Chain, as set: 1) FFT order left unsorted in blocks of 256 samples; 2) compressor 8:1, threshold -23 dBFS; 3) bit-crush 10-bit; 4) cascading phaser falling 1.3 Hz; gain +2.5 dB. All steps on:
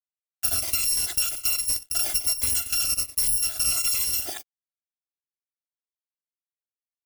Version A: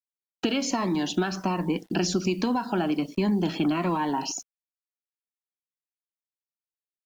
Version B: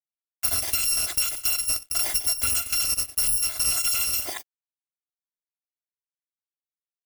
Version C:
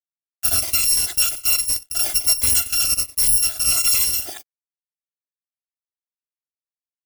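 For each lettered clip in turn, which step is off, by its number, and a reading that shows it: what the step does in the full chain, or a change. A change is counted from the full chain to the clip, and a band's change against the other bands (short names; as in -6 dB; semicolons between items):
1, 8 kHz band -27.5 dB; 4, 1 kHz band +3.0 dB; 2, mean gain reduction 4.5 dB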